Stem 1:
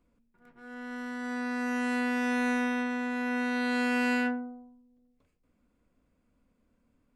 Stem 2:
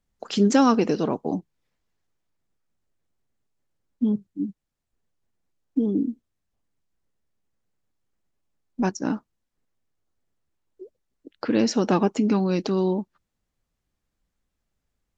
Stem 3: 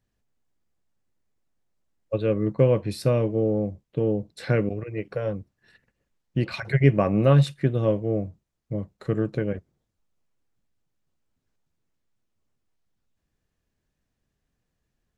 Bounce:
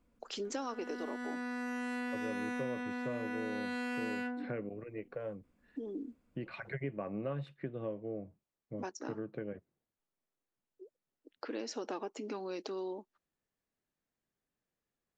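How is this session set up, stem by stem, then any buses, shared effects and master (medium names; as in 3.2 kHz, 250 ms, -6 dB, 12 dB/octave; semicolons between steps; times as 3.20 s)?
-1.5 dB, 0.00 s, no send, none
-10.5 dB, 0.00 s, no send, high-pass 310 Hz 24 dB/octave
-9.5 dB, 0.00 s, no send, three-band isolator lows -12 dB, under 170 Hz, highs -23 dB, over 3.1 kHz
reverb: none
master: compression 3:1, threshold -37 dBFS, peak gain reduction 10.5 dB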